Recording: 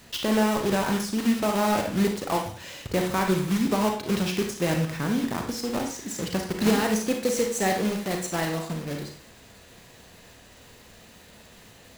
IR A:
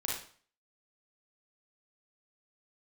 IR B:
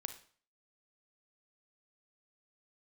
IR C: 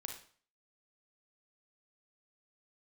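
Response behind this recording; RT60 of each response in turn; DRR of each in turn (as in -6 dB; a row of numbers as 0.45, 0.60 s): C; 0.45, 0.45, 0.45 s; -4.0, 8.0, 2.5 dB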